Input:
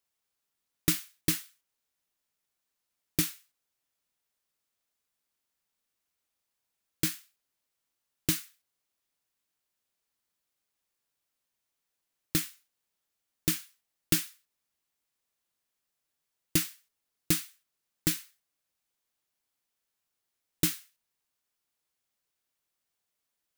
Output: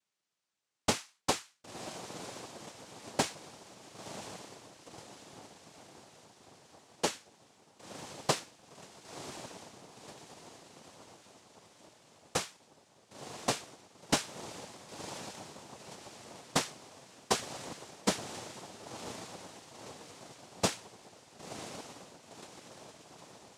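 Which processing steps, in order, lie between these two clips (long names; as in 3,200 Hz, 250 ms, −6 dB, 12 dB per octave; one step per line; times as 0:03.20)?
feedback delay with all-pass diffusion 1,029 ms, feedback 58%, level −10 dB
cochlear-implant simulation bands 2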